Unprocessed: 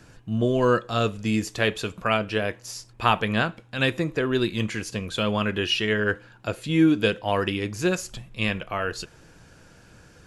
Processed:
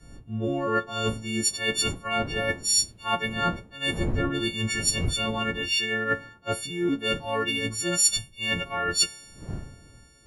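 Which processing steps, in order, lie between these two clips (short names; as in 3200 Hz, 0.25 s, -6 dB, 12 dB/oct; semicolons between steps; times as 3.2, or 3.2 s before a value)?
frequency quantiser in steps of 4 st; wind noise 270 Hz -36 dBFS; reverse; compressor 16:1, threshold -27 dBFS, peak gain reduction 17 dB; reverse; three-band expander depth 100%; gain +4 dB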